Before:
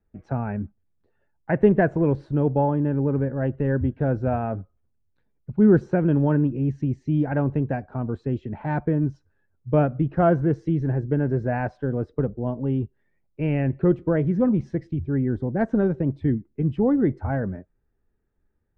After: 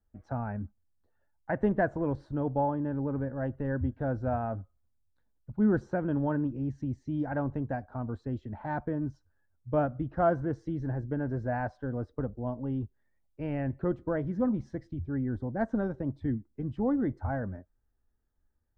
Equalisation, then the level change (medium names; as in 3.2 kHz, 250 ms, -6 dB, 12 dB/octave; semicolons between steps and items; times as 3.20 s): fifteen-band graphic EQ 160 Hz -10 dB, 400 Hz -9 dB, 2.5 kHz -11 dB; -3.0 dB